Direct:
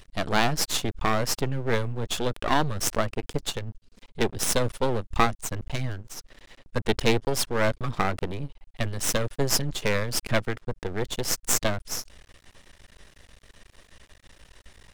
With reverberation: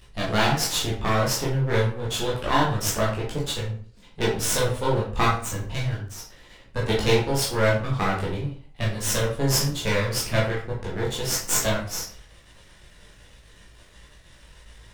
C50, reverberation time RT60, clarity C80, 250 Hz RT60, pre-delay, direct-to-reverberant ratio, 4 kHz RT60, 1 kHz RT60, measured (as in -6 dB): 4.0 dB, 0.45 s, 9.5 dB, 0.50 s, 12 ms, -6.0 dB, 0.35 s, 0.45 s